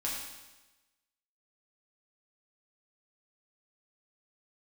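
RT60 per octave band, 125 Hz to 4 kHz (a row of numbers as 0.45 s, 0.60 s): 1.1 s, 1.1 s, 1.1 s, 1.1 s, 1.1 s, 1.1 s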